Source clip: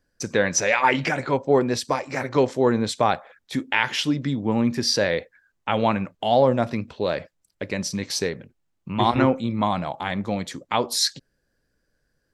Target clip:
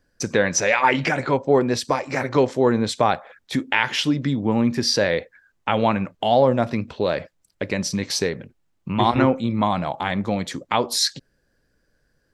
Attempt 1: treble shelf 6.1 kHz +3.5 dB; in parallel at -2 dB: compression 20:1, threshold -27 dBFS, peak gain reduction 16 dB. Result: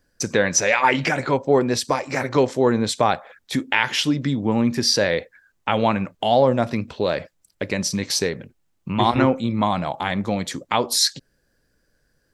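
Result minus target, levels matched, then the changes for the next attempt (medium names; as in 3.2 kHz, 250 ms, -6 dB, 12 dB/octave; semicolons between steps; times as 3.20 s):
8 kHz band +2.5 dB
change: treble shelf 6.1 kHz -3.5 dB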